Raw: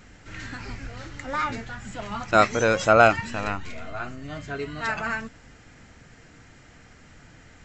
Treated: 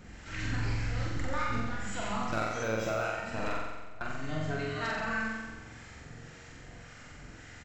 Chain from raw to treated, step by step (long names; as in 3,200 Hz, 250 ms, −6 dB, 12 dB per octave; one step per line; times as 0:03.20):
0:01.16–0:01.60: low-shelf EQ 260 Hz +11 dB
0:03.59–0:04.08: noise gate with hold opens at −22 dBFS
downward compressor 6 to 1, threshold −31 dBFS, peak gain reduction 19.5 dB
two-band tremolo in antiphase 1.8 Hz, depth 50%, crossover 850 Hz
gain into a clipping stage and back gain 27 dB
double-tracking delay 26 ms −13 dB
flutter between parallel walls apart 7.7 metres, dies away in 1.2 s
0:02.63–0:03.04: linearly interpolated sample-rate reduction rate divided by 2×